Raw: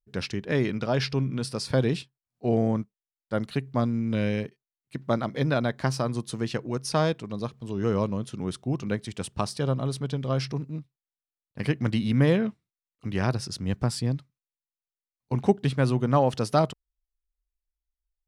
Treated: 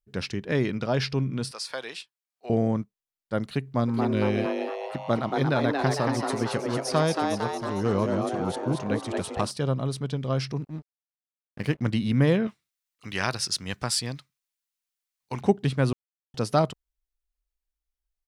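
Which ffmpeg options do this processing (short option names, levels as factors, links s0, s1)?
-filter_complex "[0:a]asettb=1/sr,asplit=3[s0][s1][s2];[s0]atrim=end=1.514[s3];[s1]atrim=start=1.51:end=2.5,asetpts=PTS-STARTPTS,afade=t=in:d=0.004:c=qsin,afade=t=out:st=0.986:d=0.004:c=qsin,highpass=920[s4];[s2]atrim=start=2.496[s5];[s3][s4]acrossfade=d=0.004:c1=hsin:c2=qsin[s6];[s6][s5]acrossfade=d=0.004:c1=qsin:c2=hsin,asplit=3[s7][s8][s9];[s7]afade=t=out:st=3.87:d=0.02[s10];[s8]asplit=9[s11][s12][s13][s14][s15][s16][s17][s18][s19];[s12]adelay=228,afreqshift=140,volume=0.631[s20];[s13]adelay=456,afreqshift=280,volume=0.367[s21];[s14]adelay=684,afreqshift=420,volume=0.211[s22];[s15]adelay=912,afreqshift=560,volume=0.123[s23];[s16]adelay=1140,afreqshift=700,volume=0.0716[s24];[s17]adelay=1368,afreqshift=840,volume=0.0412[s25];[s18]adelay=1596,afreqshift=980,volume=0.024[s26];[s19]adelay=1824,afreqshift=1120,volume=0.014[s27];[s11][s20][s21][s22][s23][s24][s25][s26][s27]amix=inputs=9:normalize=0,afade=t=in:st=3.87:d=0.02,afade=t=out:st=9.5:d=0.02[s28];[s9]afade=t=in:st=9.5:d=0.02[s29];[s10][s28][s29]amix=inputs=3:normalize=0,asettb=1/sr,asplit=3[s30][s31][s32];[s30]atrim=end=10.644[s33];[s31]atrim=start=10.64:end=11.81,asetpts=PTS-STARTPTS,afade=t=in:d=0.004:c=qsin,afade=t=out:st=1.166:d=0.004:c=qsin,aeval=exprs='sgn(val(0))*max(abs(val(0))-0.00562,0)':c=same[s34];[s32]atrim=start=11.806[s35];[s33][s34]acrossfade=d=0.004:c1=hsin:c2=qsin[s36];[s36][s35]acrossfade=d=0.004:c1=qsin:c2=hsin,asettb=1/sr,asplit=3[s37][s38][s39];[s37]atrim=end=12.474[s40];[s38]atrim=start=12.47:end=15.41,asetpts=PTS-STARTPTS,afade=t=in:d=0.004:c=qsin,afade=t=out:st=2.936:d=0.004:c=qsin,tiltshelf=f=710:g=-9[s41];[s39]atrim=start=15.406[s42];[s40][s41]acrossfade=d=0.004:c1=hsin:c2=qsin[s43];[s43][s42]acrossfade=d=0.004:c1=qsin:c2=hsin,asplit=3[s44][s45][s46];[s44]atrim=end=15.93,asetpts=PTS-STARTPTS,afade=t=out:st=15.926:d=0.004:c=hsin[s47];[s45]atrim=start=15.93:end=16.34,asetpts=PTS-STARTPTS,volume=0[s48];[s46]atrim=start=16.34,asetpts=PTS-STARTPTS,afade=t=in:d=0.004:c=hsin[s49];[s47][s48][s49]concat=n=3:v=0:a=1"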